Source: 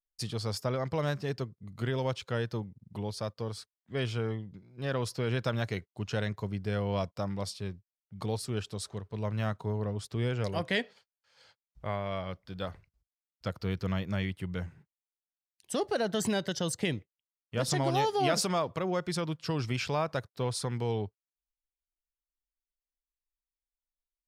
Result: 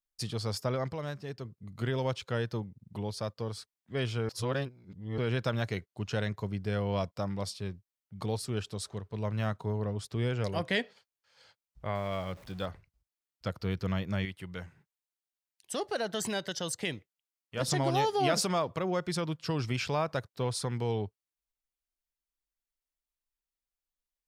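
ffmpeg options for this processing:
-filter_complex "[0:a]asettb=1/sr,asplit=3[a][b][c];[a]atrim=end=11.954[d];[b]atrim=start=11.95:end=12.66,asetpts=PTS-STARTPTS,afade=t=in:d=0.004:c=qsin,afade=t=out:st=0.706:d=0.004:c=qsin,aeval=exprs='val(0)+0.5*0.00376*sgn(val(0))':c=same[e];[c]atrim=start=12.656[f];[d][e]acrossfade=d=0.004:c1=hsin:c2=qsin[g];[g][f]acrossfade=d=0.004:c1=qsin:c2=hsin,asettb=1/sr,asplit=3[h][i][j];[h]atrim=end=14.254[k];[i]atrim=start=14.25:end=17.61,asetpts=PTS-STARTPTS,afade=t=in:d=0.004:c=qsin,afade=t=out:st=3.356:d=0.004:c=qsin,lowshelf=f=420:g=-8[l];[j]atrim=start=17.606[m];[k][l]acrossfade=d=0.004:c1=hsin:c2=qsin[n];[n][m]acrossfade=d=0.004:c1=qsin:c2=hsin,asplit=5[o][p][q][r][s];[o]atrim=end=0.932[t];[p]atrim=start=0.928:end=1.452,asetpts=PTS-STARTPTS,volume=-6.5dB[u];[q]atrim=start=1.448:end=4.292[v];[r]atrim=start=4.288:end=5.182,asetpts=PTS-STARTPTS,areverse[w];[s]atrim=start=5.178[x];[t][u]acrossfade=d=0.004:c1=hsin:c2=hsin[y];[y][v]acrossfade=d=0.004:c1=hsin:c2=hsin[z];[z][w]acrossfade=d=0.004:c1=hsin:c2=hsin[aa];[aa][x]acrossfade=d=0.004:c1=hsin:c2=hsin"

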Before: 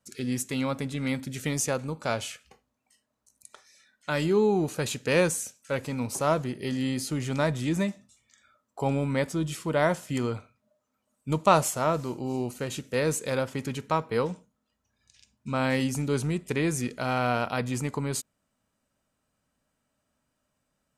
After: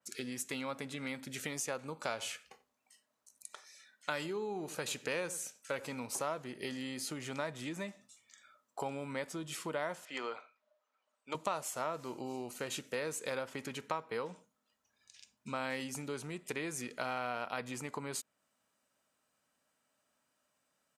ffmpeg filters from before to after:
-filter_complex "[0:a]asplit=3[a][b][c];[a]afade=t=out:st=2.18:d=0.02[d];[b]asplit=2[e][f];[f]adelay=90,lowpass=f=1.1k:p=1,volume=-16dB,asplit=2[g][h];[h]adelay=90,lowpass=f=1.1k:p=1,volume=0.18[i];[e][g][i]amix=inputs=3:normalize=0,afade=t=in:st=2.18:d=0.02,afade=t=out:st=6:d=0.02[j];[c]afade=t=in:st=6:d=0.02[k];[d][j][k]amix=inputs=3:normalize=0,asettb=1/sr,asplit=3[l][m][n];[l]atrim=end=10.054[o];[m]atrim=start=10.05:end=11.35,asetpts=PTS-STARTPTS,afade=t=in:d=0.004:c=qsin,afade=t=out:st=1.296:d=0.004:c=qsin,highpass=520,lowpass=4k[p];[n]atrim=start=11.346[q];[o][p]acrossfade=d=0.004:c1=hsin:c2=qsin[r];[r][q]acrossfade=d=0.004:c1=qsin:c2=hsin,acompressor=threshold=-32dB:ratio=6,highpass=f=590:p=1,adynamicequalizer=threshold=0.002:dfrequency=3400:dqfactor=0.7:tfrequency=3400:tqfactor=0.7:attack=5:release=100:ratio=0.375:range=2:mode=cutabove:tftype=highshelf,volume=1dB"

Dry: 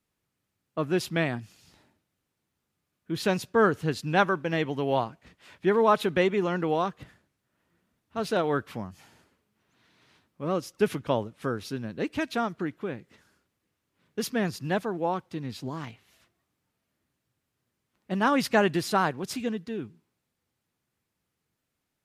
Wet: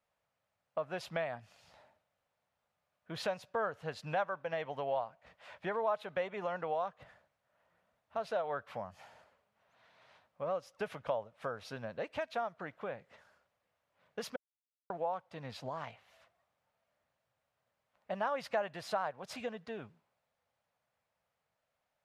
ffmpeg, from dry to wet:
-filter_complex "[0:a]asplit=3[a][b][c];[a]atrim=end=14.36,asetpts=PTS-STARTPTS,afade=t=out:st=14.356:d=0.004:c=hsin[d];[b]atrim=start=14.36:end=14.9,asetpts=PTS-STARTPTS,volume=0[e];[c]atrim=start=14.9,asetpts=PTS-STARTPTS,afade=t=in:d=0.004:c=hsin[f];[d][e][f]concat=n=3:v=0:a=1,lowpass=f=2.1k:p=1,lowshelf=f=450:t=q:w=3:g=-9.5,acompressor=threshold=-39dB:ratio=2.5,volume=1dB"

